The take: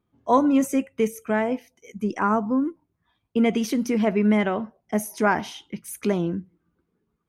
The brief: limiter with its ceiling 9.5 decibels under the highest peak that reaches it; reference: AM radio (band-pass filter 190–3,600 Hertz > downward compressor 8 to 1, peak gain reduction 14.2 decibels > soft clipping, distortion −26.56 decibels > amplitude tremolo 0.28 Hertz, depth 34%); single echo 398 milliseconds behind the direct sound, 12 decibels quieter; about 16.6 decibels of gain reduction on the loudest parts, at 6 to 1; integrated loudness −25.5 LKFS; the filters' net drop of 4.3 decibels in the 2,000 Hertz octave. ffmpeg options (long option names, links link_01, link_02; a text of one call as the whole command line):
ffmpeg -i in.wav -af "equalizer=frequency=2000:width_type=o:gain=-5.5,acompressor=threshold=-34dB:ratio=6,alimiter=level_in=7.5dB:limit=-24dB:level=0:latency=1,volume=-7.5dB,highpass=190,lowpass=3600,aecho=1:1:398:0.251,acompressor=threshold=-49dB:ratio=8,asoftclip=threshold=-39dB,tremolo=f=0.28:d=0.34,volume=30dB" out.wav